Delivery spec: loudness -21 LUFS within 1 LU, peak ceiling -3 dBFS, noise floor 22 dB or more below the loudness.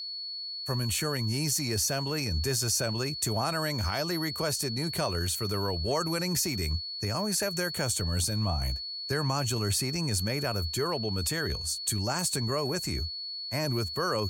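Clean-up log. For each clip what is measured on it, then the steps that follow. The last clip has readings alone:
steady tone 4400 Hz; tone level -35 dBFS; loudness -29.5 LUFS; peak -14.5 dBFS; loudness target -21.0 LUFS
-> notch 4400 Hz, Q 30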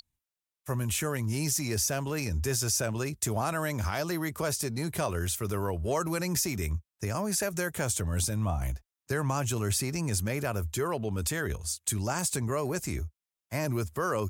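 steady tone none; loudness -30.5 LUFS; peak -15.0 dBFS; loudness target -21.0 LUFS
-> gain +9.5 dB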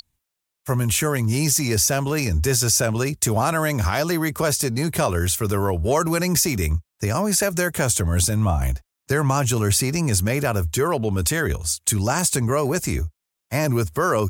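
loudness -21.0 LUFS; peak -5.5 dBFS; noise floor -82 dBFS

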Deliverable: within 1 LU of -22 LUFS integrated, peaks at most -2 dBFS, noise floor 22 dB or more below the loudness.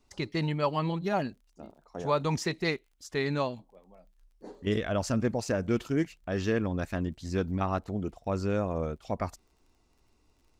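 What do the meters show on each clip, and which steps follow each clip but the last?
ticks 21/s; loudness -31.5 LUFS; peak -14.5 dBFS; loudness target -22.0 LUFS
-> de-click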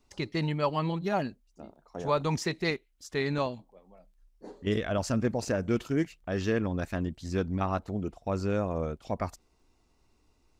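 ticks 0/s; loudness -31.5 LUFS; peak -14.5 dBFS; loudness target -22.0 LUFS
-> gain +9.5 dB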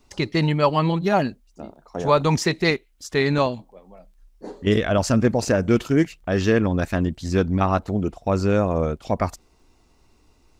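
loudness -22.0 LUFS; peak -5.0 dBFS; noise floor -59 dBFS

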